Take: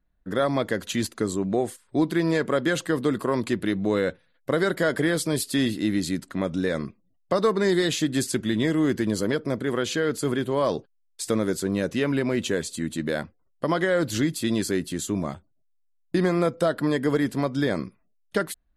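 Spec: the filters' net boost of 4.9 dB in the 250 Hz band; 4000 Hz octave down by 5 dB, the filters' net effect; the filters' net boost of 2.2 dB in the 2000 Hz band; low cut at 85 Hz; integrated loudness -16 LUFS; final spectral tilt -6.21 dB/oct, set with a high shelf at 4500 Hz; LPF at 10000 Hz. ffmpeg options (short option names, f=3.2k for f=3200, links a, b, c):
-af "highpass=85,lowpass=10k,equalizer=f=250:t=o:g=6.5,equalizer=f=2k:t=o:g=4.5,equalizer=f=4k:t=o:g=-4.5,highshelf=f=4.5k:g=-6.5,volume=6.5dB"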